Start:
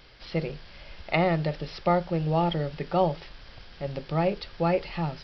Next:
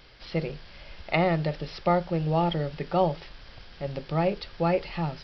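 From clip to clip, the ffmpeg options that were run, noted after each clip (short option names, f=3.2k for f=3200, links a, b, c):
-af anull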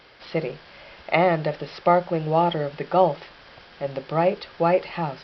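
-af "highpass=f=460:p=1,highshelf=f=2.9k:g=-11.5,volume=8.5dB"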